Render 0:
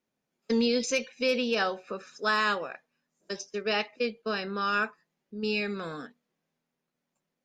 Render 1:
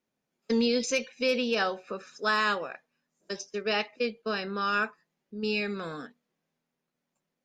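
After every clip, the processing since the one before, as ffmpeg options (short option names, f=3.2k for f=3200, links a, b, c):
-af anull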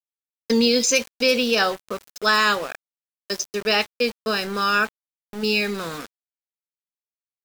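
-af "aemphasis=mode=production:type=50fm,aeval=exprs='val(0)*gte(abs(val(0)),0.0119)':c=same,volume=7dB"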